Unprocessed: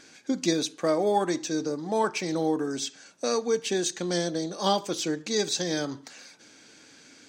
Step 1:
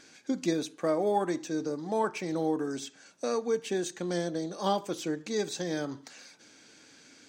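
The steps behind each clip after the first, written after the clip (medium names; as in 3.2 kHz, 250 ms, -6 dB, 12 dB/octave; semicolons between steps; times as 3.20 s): dynamic bell 4.9 kHz, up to -8 dB, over -45 dBFS, Q 0.78; trim -3 dB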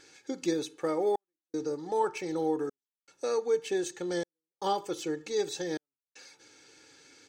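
comb 2.3 ms, depth 67%; trance gate "xxxxxx.." 78 bpm -60 dB; trim -2.5 dB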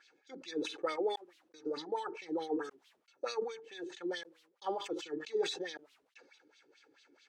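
wah-wah 4.6 Hz 300–3700 Hz, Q 2.8; decay stretcher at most 98 dB/s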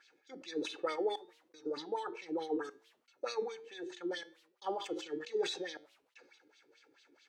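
flange 1.3 Hz, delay 7.9 ms, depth 1.6 ms, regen +88%; trim +4 dB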